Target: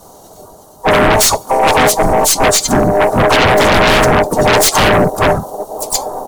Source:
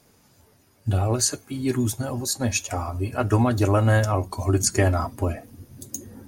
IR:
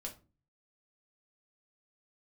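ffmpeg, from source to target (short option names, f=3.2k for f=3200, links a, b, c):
-filter_complex "[0:a]afftfilt=real='real(if(lt(b,1008),b+24*(1-2*mod(floor(b/24),2)),b),0)':imag='imag(if(lt(b,1008),b+24*(1-2*mod(floor(b/24),2)),b),0)':win_size=2048:overlap=0.75,afftfilt=real='re*(1-between(b*sr/4096,1400,5500))':imag='im*(1-between(b*sr/4096,1400,5500))':win_size=4096:overlap=0.75,equalizer=f=190:t=o:w=1.7:g=4.5,asplit=4[a][b][c][d];[b]asetrate=22050,aresample=44100,atempo=2,volume=-13dB[e];[c]asetrate=35002,aresample=44100,atempo=1.25992,volume=-16dB[f];[d]asetrate=52444,aresample=44100,atempo=0.840896,volume=-9dB[g];[a][e][f][g]amix=inputs=4:normalize=0,aeval=exprs='0.596*(cos(1*acos(clip(val(0)/0.596,-1,1)))-cos(1*PI/2))+0.00596*(cos(2*acos(clip(val(0)/0.596,-1,1)))-cos(2*PI/2))+0.0299*(cos(8*acos(clip(val(0)/0.596,-1,1)))-cos(8*PI/2))':c=same,asplit=4[h][i][j][k];[i]asetrate=29433,aresample=44100,atempo=1.49831,volume=-5dB[l];[j]asetrate=33038,aresample=44100,atempo=1.33484,volume=-15dB[m];[k]asetrate=55563,aresample=44100,atempo=0.793701,volume=-9dB[n];[h][l][m][n]amix=inputs=4:normalize=0,asplit=2[o][p];[p]aeval=exprs='0.75*sin(PI/2*7.08*val(0)/0.75)':c=same,volume=-3.5dB[q];[o][q]amix=inputs=2:normalize=0,volume=-1.5dB"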